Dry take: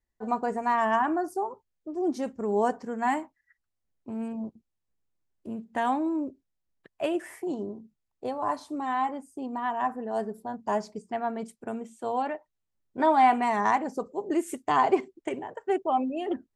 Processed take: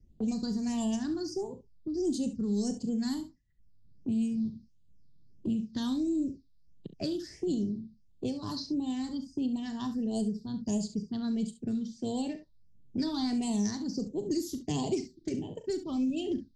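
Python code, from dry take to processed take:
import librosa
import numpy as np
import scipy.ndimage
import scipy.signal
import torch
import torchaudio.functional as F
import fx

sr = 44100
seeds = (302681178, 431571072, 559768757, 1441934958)

p1 = fx.env_lowpass(x, sr, base_hz=1100.0, full_db=-22.5)
p2 = fx.phaser_stages(p1, sr, stages=6, low_hz=630.0, high_hz=1500.0, hz=1.5, feedback_pct=40)
p3 = 10.0 ** (-25.5 / 20.0) * np.tanh(p2 / 10.0 ** (-25.5 / 20.0))
p4 = p2 + (p3 * librosa.db_to_amplitude(-5.5))
p5 = fx.curve_eq(p4, sr, hz=(160.0, 1400.0, 2100.0, 4900.0, 7600.0), db=(0, -28, -25, 11, 2))
p6 = p5 + fx.room_early_taps(p5, sr, ms=(39, 68), db=(-12.5, -13.0), dry=0)
p7 = fx.band_squash(p6, sr, depth_pct=70)
y = p7 * librosa.db_to_amplitude(6.0)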